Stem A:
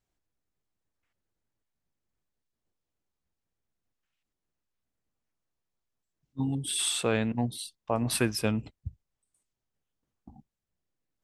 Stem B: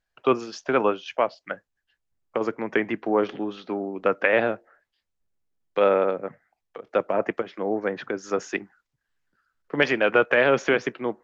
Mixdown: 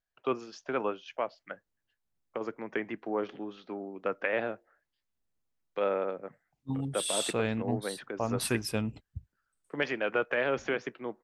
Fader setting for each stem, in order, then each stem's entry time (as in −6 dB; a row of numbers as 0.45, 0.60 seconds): −3.5, −10.0 decibels; 0.30, 0.00 seconds